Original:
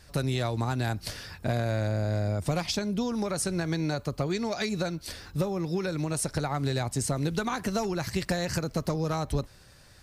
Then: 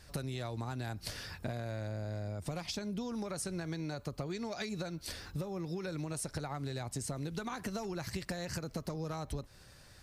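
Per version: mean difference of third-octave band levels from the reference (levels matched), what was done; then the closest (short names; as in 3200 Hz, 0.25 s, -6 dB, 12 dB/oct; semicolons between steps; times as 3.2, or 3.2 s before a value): 2.0 dB: compressor, threshold -33 dBFS, peak gain reduction 10.5 dB; gain -2.5 dB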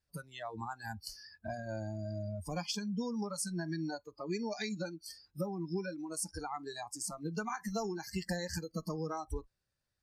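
11.5 dB: spectral noise reduction 26 dB; gain -6 dB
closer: first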